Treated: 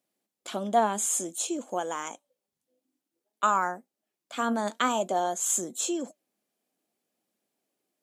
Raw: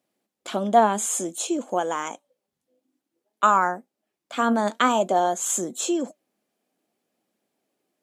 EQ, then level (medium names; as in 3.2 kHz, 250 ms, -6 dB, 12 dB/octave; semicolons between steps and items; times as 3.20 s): treble shelf 4 kHz +6.5 dB; -6.5 dB